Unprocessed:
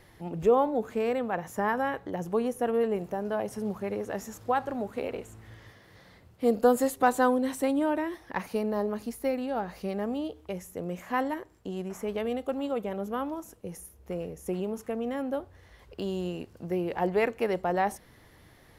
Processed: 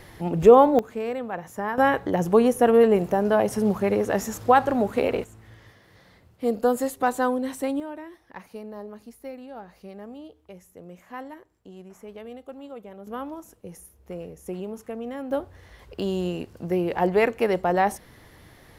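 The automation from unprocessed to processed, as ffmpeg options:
ffmpeg -i in.wav -af "asetnsamples=nb_out_samples=441:pad=0,asendcmd='0.79 volume volume -1dB;1.78 volume volume 10dB;5.24 volume volume 0dB;7.8 volume volume -9dB;13.07 volume volume -1.5dB;15.31 volume volume 5.5dB',volume=9.5dB" out.wav

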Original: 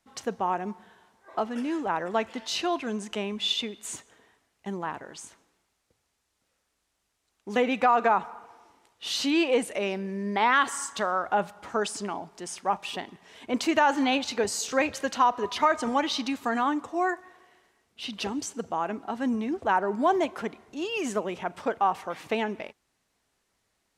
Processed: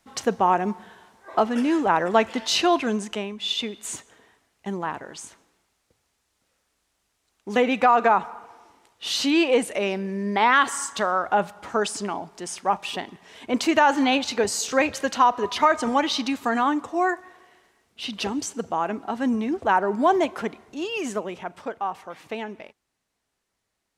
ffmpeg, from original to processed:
ffmpeg -i in.wav -af "volume=15.5dB,afade=type=out:start_time=2.81:duration=0.56:silence=0.266073,afade=type=in:start_time=3.37:duration=0.3:silence=0.421697,afade=type=out:start_time=20.46:duration=1.28:silence=0.398107" out.wav

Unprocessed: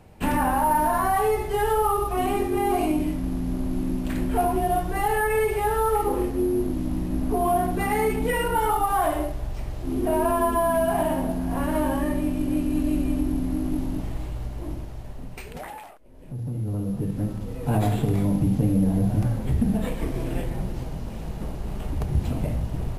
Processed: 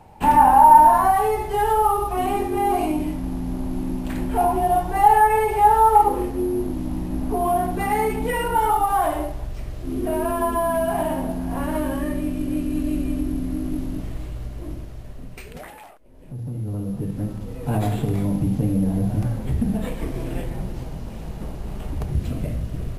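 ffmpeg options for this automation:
ffmpeg -i in.wav -af "asetnsamples=nb_out_samples=441:pad=0,asendcmd='1.11 equalizer g 6.5;4.41 equalizer g 13.5;6.08 equalizer g 5;9.45 equalizer g -6.5;10.42 equalizer g 1;11.77 equalizer g -7;15.8 equalizer g -0.5;22.13 equalizer g -10.5',equalizer=frequency=860:width_type=o:width=0.38:gain=15" out.wav

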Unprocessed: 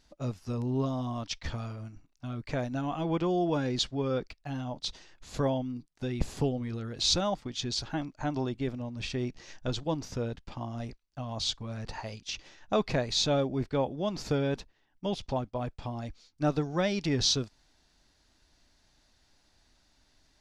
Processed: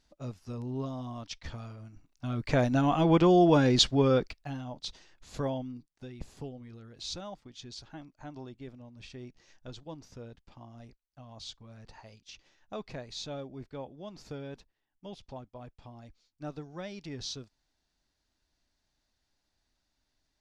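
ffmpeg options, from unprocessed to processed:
ffmpeg -i in.wav -af "volume=7dB,afade=type=in:start_time=1.87:duration=0.77:silence=0.237137,afade=type=out:start_time=4.03:duration=0.56:silence=0.281838,afade=type=out:start_time=5.64:duration=0.49:silence=0.375837" out.wav

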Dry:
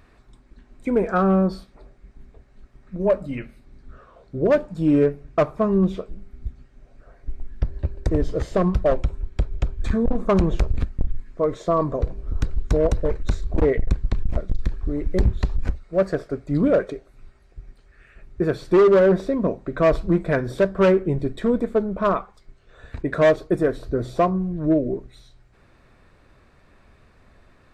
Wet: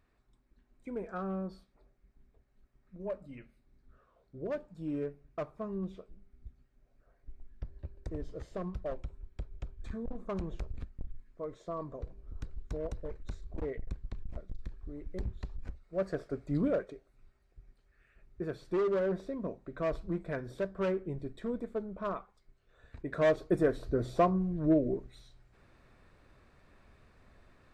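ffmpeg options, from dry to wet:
ffmpeg -i in.wav -af "afade=type=in:start_time=15.7:duration=0.76:silence=0.316228,afade=type=out:start_time=16.46:duration=0.4:silence=0.446684,afade=type=in:start_time=22.98:duration=0.61:silence=0.375837" out.wav

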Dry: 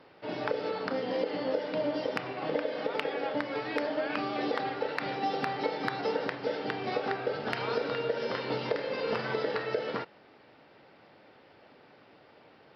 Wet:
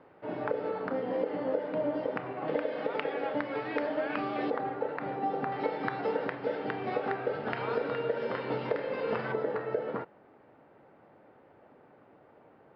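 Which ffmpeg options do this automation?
ffmpeg -i in.wav -af "asetnsamples=nb_out_samples=441:pad=0,asendcmd='2.48 lowpass f 2500;4.5 lowpass f 1300;5.52 lowpass f 2200;9.32 lowpass f 1300',lowpass=1600" out.wav

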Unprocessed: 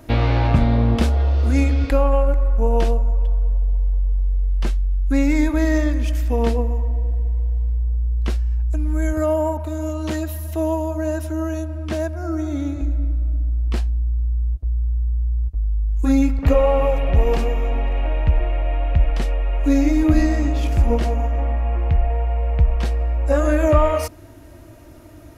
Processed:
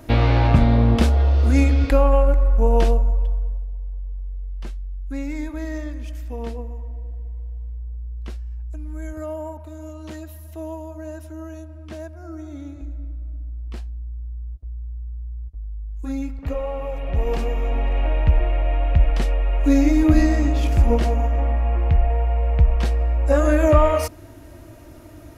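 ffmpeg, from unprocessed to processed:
ffmpeg -i in.wav -af "volume=12.5dB,afade=type=out:start_time=2.96:duration=0.71:silence=0.251189,afade=type=in:start_time=16.84:duration=1.17:silence=0.266073" out.wav

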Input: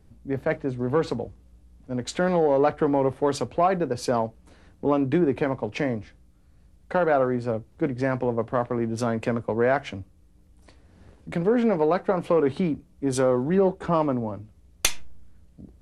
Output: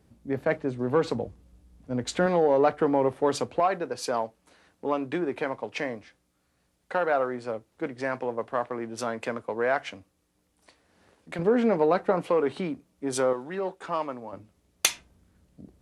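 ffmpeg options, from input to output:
ffmpeg -i in.wav -af "asetnsamples=nb_out_samples=441:pad=0,asendcmd='1.15 highpass f 60;2.26 highpass f 230;3.6 highpass f 700;11.39 highpass f 180;12.22 highpass f 460;13.33 highpass f 1300;14.33 highpass f 360;14.89 highpass f 160',highpass=frequency=170:poles=1" out.wav

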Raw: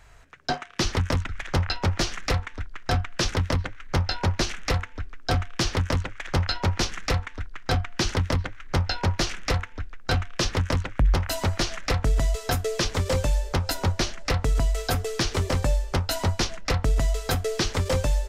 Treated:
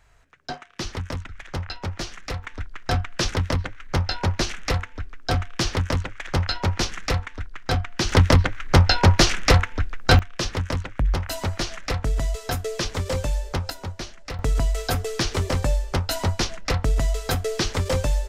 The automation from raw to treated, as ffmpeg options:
ffmpeg -i in.wav -af "asetnsamples=nb_out_samples=441:pad=0,asendcmd='2.44 volume volume 1dB;8.12 volume volume 9dB;10.19 volume volume -1.5dB;13.7 volume volume -8.5dB;14.39 volume volume 1dB',volume=-6dB" out.wav

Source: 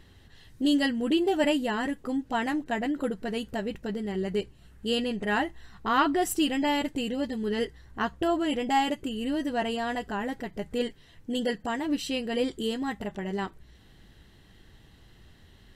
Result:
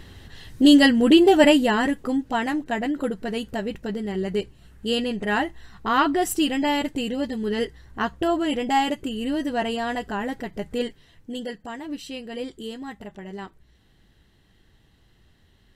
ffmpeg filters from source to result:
ffmpeg -i in.wav -af "volume=10.5dB,afade=type=out:start_time=1.25:duration=1.17:silence=0.446684,afade=type=out:start_time=10.66:duration=0.84:silence=0.398107" out.wav

